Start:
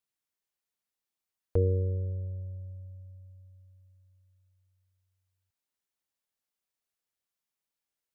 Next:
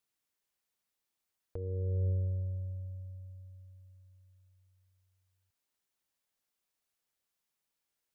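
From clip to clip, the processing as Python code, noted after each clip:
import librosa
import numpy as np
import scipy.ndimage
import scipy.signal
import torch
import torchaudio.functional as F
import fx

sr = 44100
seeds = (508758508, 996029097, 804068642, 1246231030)

y = fx.over_compress(x, sr, threshold_db=-32.0, ratio=-1.0)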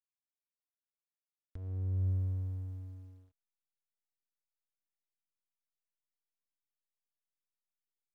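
y = fx.curve_eq(x, sr, hz=(160.0, 340.0, 510.0, 950.0, 1600.0), db=(0, -6, -19, -11, 8))
y = fx.backlash(y, sr, play_db=-38.5)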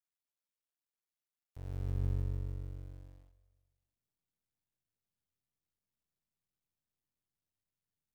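y = fx.cycle_switch(x, sr, every=2, mode='muted')
y = fx.echo_feedback(y, sr, ms=195, feedback_pct=44, wet_db=-17.0)
y = F.gain(torch.from_numpy(y), 1.0).numpy()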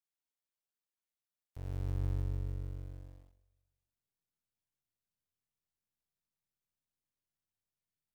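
y = fx.leveller(x, sr, passes=1)
y = F.gain(torch.from_numpy(y), -1.5).numpy()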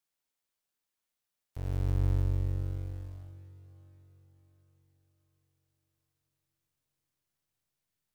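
y = fx.echo_diffused(x, sr, ms=512, feedback_pct=50, wet_db=-15.5)
y = F.gain(torch.from_numpy(y), 6.5).numpy()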